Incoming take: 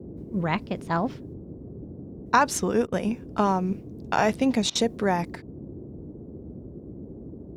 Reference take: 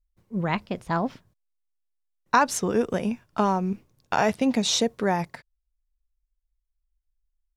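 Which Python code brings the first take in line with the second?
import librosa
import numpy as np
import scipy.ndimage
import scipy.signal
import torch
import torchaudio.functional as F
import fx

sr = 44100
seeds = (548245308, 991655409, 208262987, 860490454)

y = fx.fix_interpolate(x, sr, at_s=(2.87, 4.7), length_ms=52.0)
y = fx.noise_reduce(y, sr, print_start_s=7.05, print_end_s=7.55, reduce_db=30.0)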